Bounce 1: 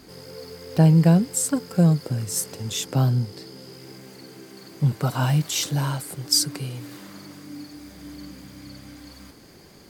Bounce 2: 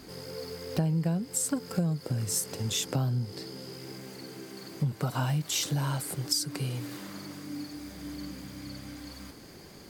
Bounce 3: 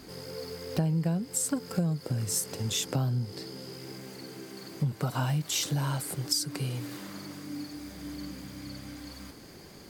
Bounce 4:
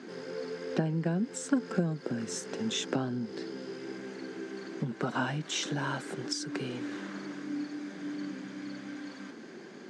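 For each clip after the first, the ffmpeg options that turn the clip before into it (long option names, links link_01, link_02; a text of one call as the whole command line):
ffmpeg -i in.wav -af "acompressor=threshold=-26dB:ratio=6" out.wav
ffmpeg -i in.wav -af anull out.wav
ffmpeg -i in.wav -af "highpass=frequency=180:width=0.5412,highpass=frequency=180:width=1.3066,equalizer=frequency=230:width_type=q:width=4:gain=7,equalizer=frequency=370:width_type=q:width=4:gain=7,equalizer=frequency=1600:width_type=q:width=4:gain=8,equalizer=frequency=4700:width_type=q:width=4:gain=-9,lowpass=frequency=6200:width=0.5412,lowpass=frequency=6200:width=1.3066" out.wav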